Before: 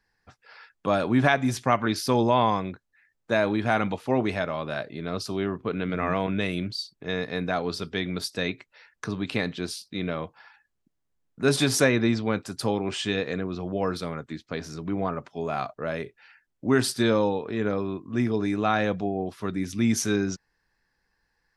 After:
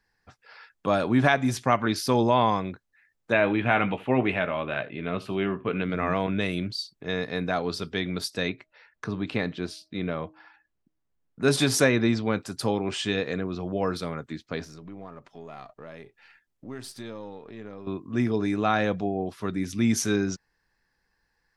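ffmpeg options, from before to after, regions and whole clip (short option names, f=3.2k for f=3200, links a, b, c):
-filter_complex "[0:a]asettb=1/sr,asplit=3[a][b][c];[a]atrim=end=3.324[d];[b]atrim=start=3.32:end=5.82,asetpts=PTS-STARTPTS,afade=t=in:d=0.004:c=qsin,afade=t=out:st=2.496:d=0.004:c=qsin,highshelf=f=3.8k:t=q:w=3:g=-11,asplit=2[e][f];[f]adelay=16,volume=-11dB[g];[e][g]amix=inputs=2:normalize=0,atrim=end_sample=110250,aecho=1:1:76:0.1,atrim=end_sample=110250[h];[c]atrim=start=5.816[i];[d][h]acrossfade=d=0.004:c1=hsin:c2=qsin[j];[j][i]acrossfade=d=0.004:c1=qsin:c2=hsin,asettb=1/sr,asplit=3[k][l][m];[k]atrim=end=8.494[n];[l]atrim=start=8.49:end=11.42,asetpts=PTS-STARTPTS,afade=t=in:d=0.004:c=qsin,afade=t=out:st=2.926:d=0.004:c=qsin,lowpass=f=2.8k:p=1,bandreject=f=314.6:t=h:w=4,bandreject=f=629.2:t=h:w=4[o];[m]atrim=start=11.416[p];[n][o]acrossfade=d=0.004:c1=hsin:c2=qsin[q];[q][p]acrossfade=d=0.004:c1=qsin:c2=hsin,asettb=1/sr,asplit=3[r][s][t];[r]atrim=end=14.644[u];[s]atrim=start=14.64:end=17.87,asetpts=PTS-STARTPTS,afade=t=in:d=0.004:c=qsin,afade=t=out:st=3.226:d=0.004:c=qsin,aeval=exprs='if(lt(val(0),0),0.708*val(0),val(0))':c=same,acompressor=threshold=-47dB:ratio=2:attack=3.2:release=140:knee=1:detection=peak,bandreject=f=1.5k:w=17[v];[t]atrim=start=17.866[w];[u][v]acrossfade=d=0.004:c1=hsin:c2=qsin[x];[x][w]acrossfade=d=0.004:c1=qsin:c2=hsin"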